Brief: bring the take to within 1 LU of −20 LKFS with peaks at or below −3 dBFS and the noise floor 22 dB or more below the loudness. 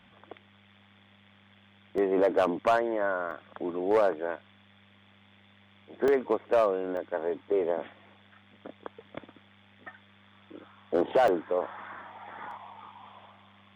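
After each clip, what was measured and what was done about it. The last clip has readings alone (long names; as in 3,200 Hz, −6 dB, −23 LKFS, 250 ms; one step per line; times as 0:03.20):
number of dropouts 6; longest dropout 2.1 ms; integrated loudness −28.0 LKFS; sample peak −16.0 dBFS; target loudness −20.0 LKFS
→ repair the gap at 0:01.98/0:03.31/0:06.08/0:06.97/0:11.28/0:12.51, 2.1 ms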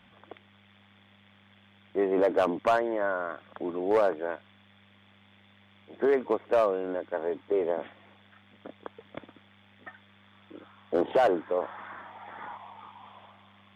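number of dropouts 0; integrated loudness −28.0 LKFS; sample peak −16.0 dBFS; target loudness −20.0 LKFS
→ level +8 dB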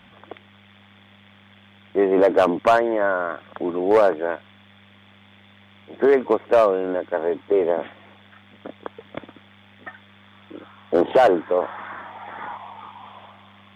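integrated loudness −20.0 LKFS; sample peak −8.0 dBFS; background noise floor −52 dBFS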